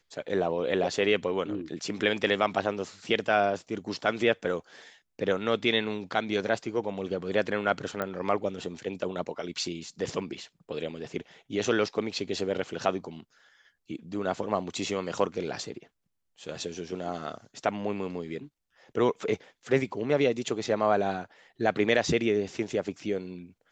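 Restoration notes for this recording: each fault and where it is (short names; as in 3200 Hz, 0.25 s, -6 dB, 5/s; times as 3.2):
8.02 pop -17 dBFS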